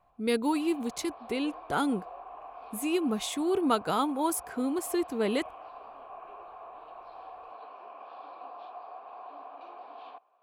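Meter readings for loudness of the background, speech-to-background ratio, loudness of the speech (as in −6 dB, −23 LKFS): −46.0 LKFS, 16.0 dB, −30.0 LKFS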